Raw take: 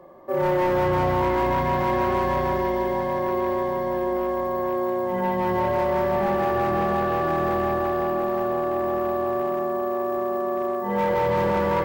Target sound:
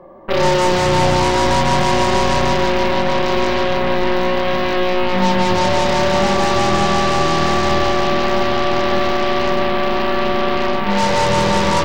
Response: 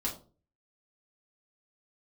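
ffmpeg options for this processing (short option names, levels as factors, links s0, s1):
-filter_complex "[0:a]aemphasis=mode=reproduction:type=75kf,aeval=exprs='0.133*(cos(1*acos(clip(val(0)/0.133,-1,1)))-cos(1*PI/2))+0.0266*(cos(2*acos(clip(val(0)/0.133,-1,1)))-cos(2*PI/2))+0.0299*(cos(4*acos(clip(val(0)/0.133,-1,1)))-cos(4*PI/2))+0.0376*(cos(7*acos(clip(val(0)/0.133,-1,1)))-cos(7*PI/2))':c=same,asplit=2[s0][s1];[1:a]atrim=start_sample=2205,lowshelf=f=320:g=6[s2];[s1][s2]afir=irnorm=-1:irlink=0,volume=0.237[s3];[s0][s3]amix=inputs=2:normalize=0,volume=1.78"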